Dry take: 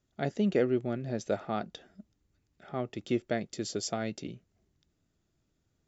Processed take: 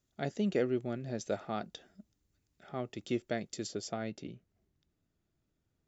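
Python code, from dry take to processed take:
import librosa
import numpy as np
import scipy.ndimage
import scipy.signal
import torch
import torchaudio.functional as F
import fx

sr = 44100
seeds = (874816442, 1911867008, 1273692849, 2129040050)

y = fx.high_shelf(x, sr, hz=4800.0, db=fx.steps((0.0, 7.5), (3.66, -6.5)))
y = y * 10.0 ** (-4.0 / 20.0)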